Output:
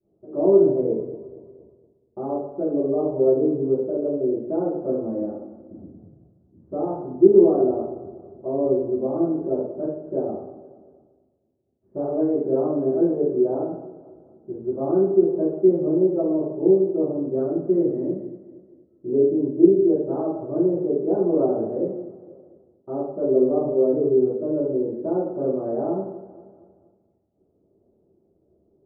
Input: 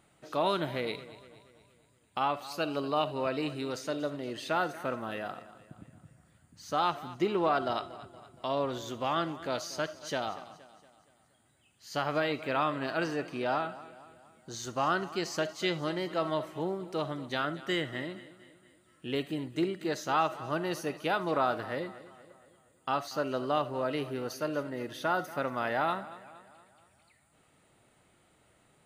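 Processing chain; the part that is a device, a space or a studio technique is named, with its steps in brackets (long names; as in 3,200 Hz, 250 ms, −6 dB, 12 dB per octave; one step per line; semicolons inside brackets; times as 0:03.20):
downward expander −59 dBFS
0:05.06–0:05.76: comb filter 3.5 ms
under water (low-pass filter 560 Hz 24 dB per octave; parametric band 390 Hz +9.5 dB 0.46 octaves)
coupled-rooms reverb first 0.69 s, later 2.3 s, from −28 dB, DRR −8.5 dB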